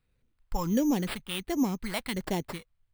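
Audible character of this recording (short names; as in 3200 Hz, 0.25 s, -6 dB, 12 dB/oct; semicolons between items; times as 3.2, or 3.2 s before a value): phasing stages 2, 1.4 Hz, lowest notch 340–1400 Hz; aliases and images of a low sample rate 6300 Hz, jitter 0%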